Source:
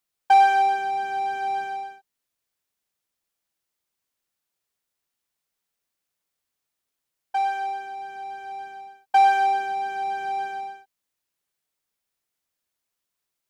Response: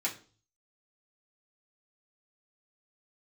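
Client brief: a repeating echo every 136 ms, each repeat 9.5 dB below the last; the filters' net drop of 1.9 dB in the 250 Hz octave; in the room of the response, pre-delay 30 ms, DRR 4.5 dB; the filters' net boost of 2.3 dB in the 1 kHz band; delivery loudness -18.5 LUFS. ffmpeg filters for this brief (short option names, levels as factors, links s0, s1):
-filter_complex "[0:a]equalizer=f=250:t=o:g=-5.5,equalizer=f=1000:t=o:g=4,aecho=1:1:136|272|408|544:0.335|0.111|0.0365|0.012,asplit=2[s0][s1];[1:a]atrim=start_sample=2205,adelay=30[s2];[s1][s2]afir=irnorm=-1:irlink=0,volume=0.335[s3];[s0][s3]amix=inputs=2:normalize=0,volume=1.41"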